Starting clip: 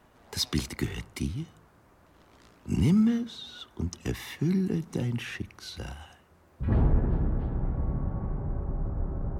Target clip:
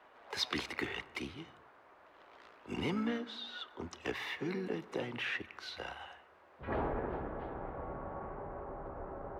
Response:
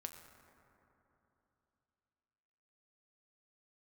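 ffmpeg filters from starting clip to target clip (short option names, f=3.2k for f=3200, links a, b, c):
-filter_complex "[0:a]asplit=2[a][b];[1:a]atrim=start_sample=2205,afade=t=out:st=0.38:d=0.01,atrim=end_sample=17199[c];[b][c]afir=irnorm=-1:irlink=0,volume=-4dB[d];[a][d]amix=inputs=2:normalize=0,asplit=2[e][f];[f]asetrate=55563,aresample=44100,atempo=0.793701,volume=-14dB[g];[e][g]amix=inputs=2:normalize=0,acrossover=split=400 3700:gain=0.0708 1 0.1[h][i][j];[h][i][j]amix=inputs=3:normalize=0"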